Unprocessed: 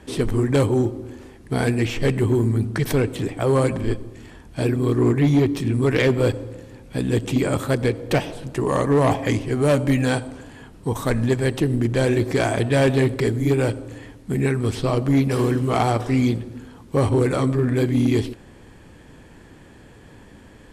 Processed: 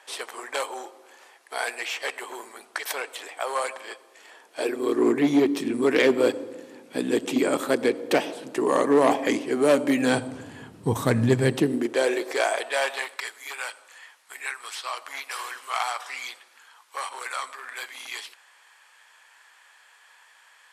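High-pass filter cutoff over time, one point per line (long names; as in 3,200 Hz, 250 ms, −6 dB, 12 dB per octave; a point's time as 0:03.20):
high-pass filter 24 dB per octave
0:04.07 680 Hz
0:05.16 250 Hz
0:09.96 250 Hz
0:10.36 96 Hz
0:11.39 96 Hz
0:11.92 350 Hz
0:13.29 970 Hz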